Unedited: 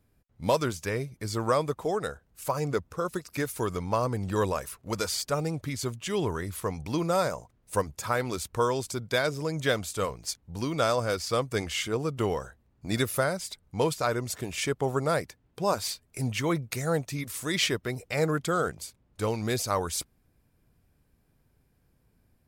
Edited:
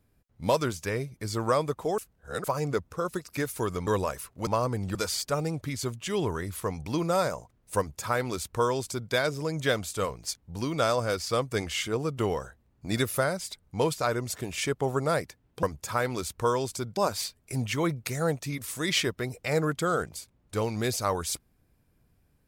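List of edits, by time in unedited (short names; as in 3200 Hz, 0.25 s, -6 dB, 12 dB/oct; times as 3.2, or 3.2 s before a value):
1.98–2.44 reverse
3.87–4.35 move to 4.95
7.78–9.12 copy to 15.63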